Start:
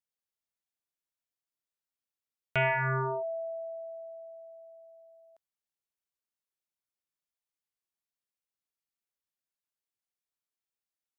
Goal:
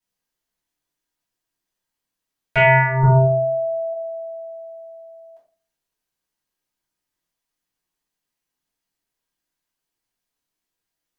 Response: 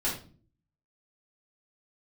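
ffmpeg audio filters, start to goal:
-filter_complex "[0:a]asettb=1/sr,asplit=3[s0][s1][s2];[s0]atrim=end=3.034[s3];[s1]atrim=start=3.03:end=3.93,asetpts=PTS-STARTPTS,afade=t=in:d=0.004:c=qsin,afade=t=out:st=0.896:d=0.004:c=qsin,aemphasis=mode=reproduction:type=riaa[s4];[s2]atrim=start=3.926[s5];[s3][s4]acrossfade=d=0.004:c1=hsin:c2=qsin[s6];[s6][s5]acrossfade=d=0.004:c1=qsin:c2=hsin[s7];[1:a]atrim=start_sample=2205,asetrate=48510,aresample=44100[s8];[s7][s8]afir=irnorm=-1:irlink=0,volume=1.78"

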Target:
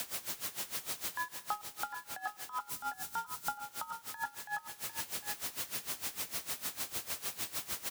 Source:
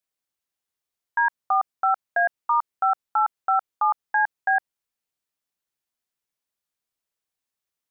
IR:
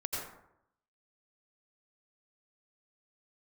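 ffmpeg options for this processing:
-filter_complex "[0:a]aeval=exprs='val(0)+0.5*0.0422*sgn(val(0))':c=same,asettb=1/sr,asplit=3[s0][s1][s2];[s0]atrim=end=2.694[s3];[s1]atrim=start=2.69:end=3.55,asetpts=PTS-STARTPTS,afade=t=in:d=0.004:c=qsin,afade=t=out:st=0.856:d=0.004:c=qsin,bass=f=250:g=10,treble=f=4000:g=7[s4];[s2]atrim=start=3.546[s5];[s3][s4]acrossfade=d=0.004:c1=hsin:c2=qsin[s6];[s6][s5]acrossfade=d=0.004:c1=qsin:c2=hsin,acompressor=threshold=0.02:ratio=6,afreqshift=59,aecho=1:1:753:0.398,asplit=2[s7][s8];[1:a]atrim=start_sample=2205,adelay=129[s9];[s8][s9]afir=irnorm=-1:irlink=0,volume=0.119[s10];[s7][s10]amix=inputs=2:normalize=0,aeval=exprs='val(0)*pow(10,-18*(0.5-0.5*cos(2*PI*6.6*n/s))/20)':c=same"

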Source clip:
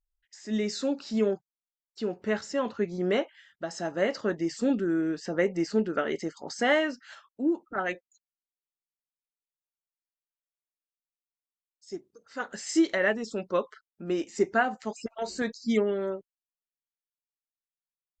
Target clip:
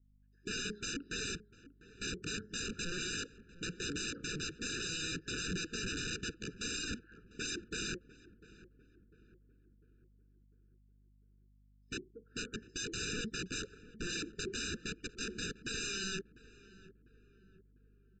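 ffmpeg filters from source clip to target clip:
-filter_complex "[0:a]lowpass=f=1900:p=1,alimiter=limit=0.0891:level=0:latency=1:release=23,adynamicsmooth=sensitivity=1:basefreq=680,aresample=16000,aeval=exprs='(mod(79.4*val(0)+1,2)-1)/79.4':c=same,aresample=44100,aeval=exprs='val(0)+0.0002*(sin(2*PI*50*n/s)+sin(2*PI*2*50*n/s)/2+sin(2*PI*3*50*n/s)/3+sin(2*PI*4*50*n/s)/4+sin(2*PI*5*50*n/s)/5)':c=same,asuperstop=centerf=810:order=12:qfactor=0.84,asplit=2[s0][s1];[s1]adelay=699,lowpass=f=1200:p=1,volume=0.158,asplit=2[s2][s3];[s3]adelay=699,lowpass=f=1200:p=1,volume=0.52,asplit=2[s4][s5];[s5]adelay=699,lowpass=f=1200:p=1,volume=0.52,asplit=2[s6][s7];[s7]adelay=699,lowpass=f=1200:p=1,volume=0.52,asplit=2[s8][s9];[s9]adelay=699,lowpass=f=1200:p=1,volume=0.52[s10];[s2][s4][s6][s8][s10]amix=inputs=5:normalize=0[s11];[s0][s11]amix=inputs=2:normalize=0,afftfilt=real='re*eq(mod(floor(b*sr/1024/590),2),0)':imag='im*eq(mod(floor(b*sr/1024/590),2),0)':win_size=1024:overlap=0.75,volume=2.37"

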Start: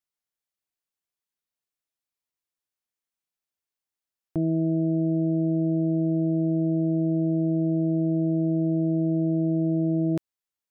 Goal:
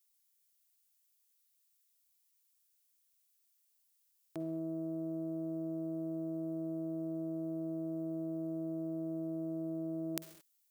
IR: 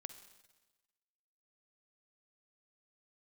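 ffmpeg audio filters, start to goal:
-filter_complex "[0:a]acontrast=48,aderivative[s0];[1:a]atrim=start_sample=2205,afade=t=out:st=0.28:d=0.01,atrim=end_sample=12789[s1];[s0][s1]afir=irnorm=-1:irlink=0,volume=3.76"

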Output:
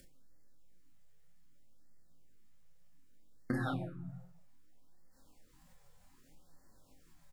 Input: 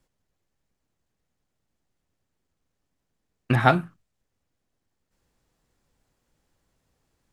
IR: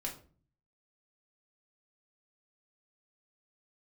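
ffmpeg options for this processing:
-filter_complex "[0:a]highshelf=f=9700:g=8.5,asplit=2[s0][s1];[s1]adelay=23,volume=0.562[s2];[s0][s2]amix=inputs=2:normalize=0[s3];[1:a]atrim=start_sample=2205[s4];[s3][s4]afir=irnorm=-1:irlink=0,flanger=delay=5.4:depth=4.5:regen=57:speed=1.4:shape=sinusoidal,acompressor=threshold=0.0141:ratio=12,asetnsamples=n=441:p=0,asendcmd='3.81 equalizer g 3',equalizer=f=900:t=o:w=0.77:g=-6,acompressor=mode=upward:threshold=0.00112:ratio=2.5,afftfilt=real='re*(1-between(b*sr/1024,270*pow(3000/270,0.5+0.5*sin(2*PI*0.64*pts/sr))/1.41,270*pow(3000/270,0.5+0.5*sin(2*PI*0.64*pts/sr))*1.41))':imag='im*(1-between(b*sr/1024,270*pow(3000/270,0.5+0.5*sin(2*PI*0.64*pts/sr))/1.41,270*pow(3000/270,0.5+0.5*sin(2*PI*0.64*pts/sr))*1.41))':win_size=1024:overlap=0.75,volume=1.78"

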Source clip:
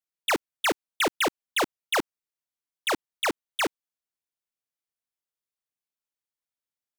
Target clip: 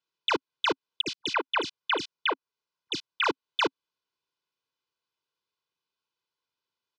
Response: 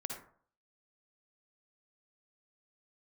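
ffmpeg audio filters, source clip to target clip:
-filter_complex "[0:a]aecho=1:1:2:0.68,asettb=1/sr,asplit=3[s0][s1][s2];[s0]atrim=end=1.014[s3];[s1]atrim=start=1.01:end=3.24,asetpts=PTS-STARTPTS,afade=t=in:d=0.004:c=qsin,afade=t=out:st=2.226:d=0.004:c=qsin,acrossover=split=280|3100[s4][s5][s6];[s6]adelay=50[s7];[s5]adelay=330[s8];[s4][s8][s7]amix=inputs=3:normalize=0,atrim=end_sample=98343[s9];[s2]atrim=start=3.236[s10];[s3][s9]acrossfade=d=0.004:c1=hsin:c2=qsin[s11];[s11][s10]acrossfade=d=0.004:c1=qsin:c2=hsin,acompressor=threshold=0.0631:ratio=6,alimiter=level_in=1.12:limit=0.0631:level=0:latency=1:release=287,volume=0.891,highpass=130,equalizer=f=270:t=q:w=4:g=6,equalizer=f=580:t=q:w=4:g=-9,equalizer=f=1100:t=q:w=4:g=3,equalizer=f=1900:t=q:w=4:g=-9,lowpass=f=4900:w=0.5412,lowpass=f=4900:w=1.3066,volume=2.66"

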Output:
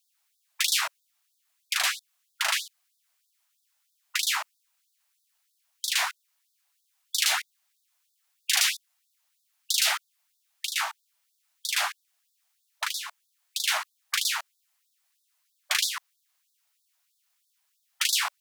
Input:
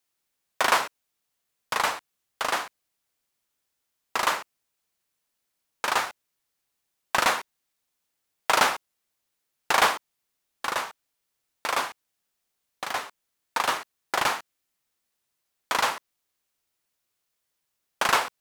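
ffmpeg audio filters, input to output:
-af "afftfilt=real='re*lt(hypot(re,im),0.126)':imag='im*lt(hypot(re,im),0.126)':win_size=1024:overlap=0.75,afftfilt=real='re*gte(b*sr/1024,580*pow(3500/580,0.5+0.5*sin(2*PI*3.1*pts/sr)))':imag='im*gte(b*sr/1024,580*pow(3500/580,0.5+0.5*sin(2*PI*3.1*pts/sr)))':win_size=1024:overlap=0.75,volume=2"

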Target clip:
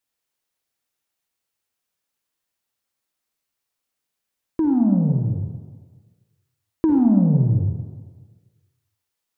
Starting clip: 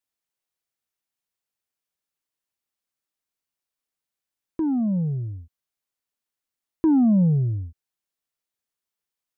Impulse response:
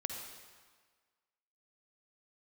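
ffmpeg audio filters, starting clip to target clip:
-filter_complex "[0:a]acompressor=threshold=0.0891:ratio=6[s0];[1:a]atrim=start_sample=2205[s1];[s0][s1]afir=irnorm=-1:irlink=0,volume=2"

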